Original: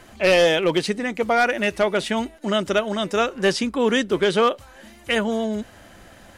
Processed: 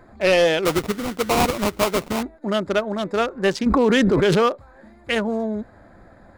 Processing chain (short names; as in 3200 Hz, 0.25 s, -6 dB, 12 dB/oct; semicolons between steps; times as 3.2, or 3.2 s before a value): Wiener smoothing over 15 samples; 0.65–2.23 sample-rate reducer 1700 Hz, jitter 20%; 3.66–4.46 fast leveller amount 100%